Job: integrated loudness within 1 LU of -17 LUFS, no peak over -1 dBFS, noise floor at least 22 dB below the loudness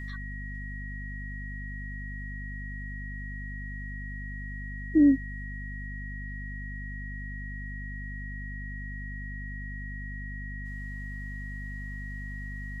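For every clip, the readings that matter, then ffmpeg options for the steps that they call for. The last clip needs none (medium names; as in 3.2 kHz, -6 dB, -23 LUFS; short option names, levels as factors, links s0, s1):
hum 50 Hz; highest harmonic 250 Hz; hum level -36 dBFS; steady tone 1.9 kHz; tone level -41 dBFS; loudness -34.5 LUFS; peak level -12.5 dBFS; loudness target -17.0 LUFS
-> -af "bandreject=f=50:t=h:w=6,bandreject=f=100:t=h:w=6,bandreject=f=150:t=h:w=6,bandreject=f=200:t=h:w=6,bandreject=f=250:t=h:w=6"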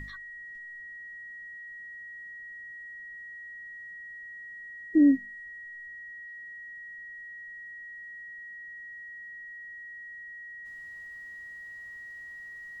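hum not found; steady tone 1.9 kHz; tone level -41 dBFS
-> -af "bandreject=f=1900:w=30"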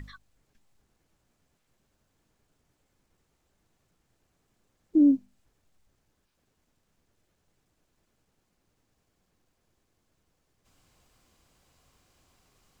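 steady tone not found; loudness -23.5 LUFS; peak level -13.0 dBFS; loudness target -17.0 LUFS
-> -af "volume=2.11"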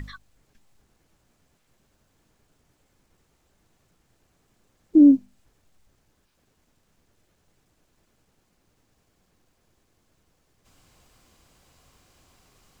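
loudness -17.5 LUFS; peak level -6.5 dBFS; noise floor -69 dBFS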